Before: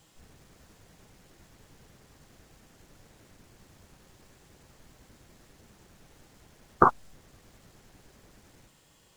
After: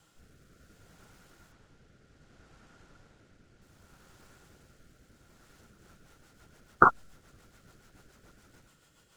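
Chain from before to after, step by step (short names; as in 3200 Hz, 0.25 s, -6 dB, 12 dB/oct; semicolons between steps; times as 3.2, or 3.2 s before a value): bell 1400 Hz +12.5 dB 0.23 oct; rotary speaker horn 0.65 Hz, later 7 Hz, at 5.36; 1.52–3.62 air absorption 61 m; gain -1 dB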